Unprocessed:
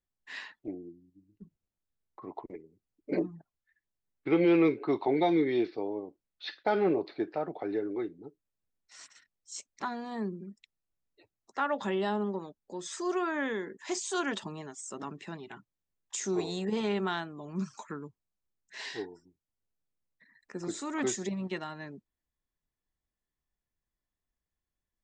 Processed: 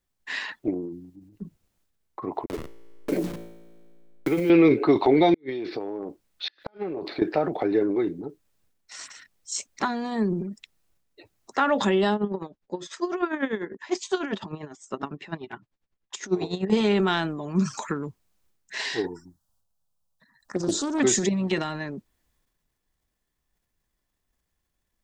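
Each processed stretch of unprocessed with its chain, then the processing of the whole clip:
2.46–4.5 level-crossing sampler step -42.5 dBFS + resonator 57 Hz, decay 1.2 s, mix 50% + three-band squash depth 70%
5.34–7.22 compressor 16:1, threshold -37 dBFS + flipped gate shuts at -31 dBFS, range -38 dB
12.14–16.7 air absorption 140 m + dB-linear tremolo 10 Hz, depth 22 dB
19.07–21 envelope phaser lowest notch 340 Hz, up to 2100 Hz, full sweep at -36 dBFS + Doppler distortion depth 0.29 ms
whole clip: dynamic EQ 1000 Hz, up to -4 dB, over -43 dBFS, Q 0.85; transient shaper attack +4 dB, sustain +8 dB; maximiser +17 dB; gain -8 dB

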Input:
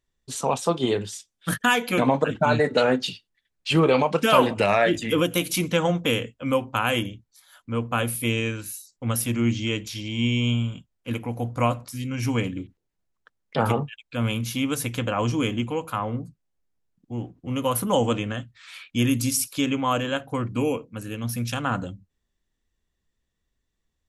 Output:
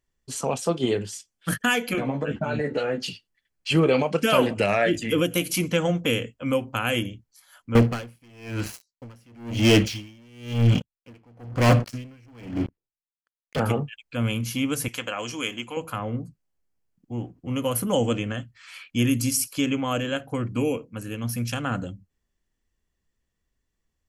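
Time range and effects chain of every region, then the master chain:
1.93–2.98 LPF 3200 Hz 6 dB/oct + compressor 3:1, threshold -23 dBFS + doubler 14 ms -3.5 dB
7.75–13.6 LPF 4100 Hz + sample leveller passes 5 + dB-linear tremolo 1 Hz, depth 39 dB
14.88–15.77 HPF 530 Hz 6 dB/oct + tilt shelf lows -3.5 dB, about 1200 Hz
whole clip: notch 3700 Hz, Q 6.9; dynamic EQ 980 Hz, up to -8 dB, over -39 dBFS, Q 2

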